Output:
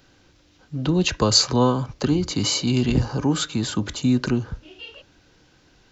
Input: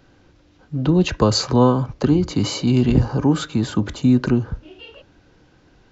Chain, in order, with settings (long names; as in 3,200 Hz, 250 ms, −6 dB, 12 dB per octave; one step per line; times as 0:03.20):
high-shelf EQ 2,300 Hz +11.5 dB
level −4.5 dB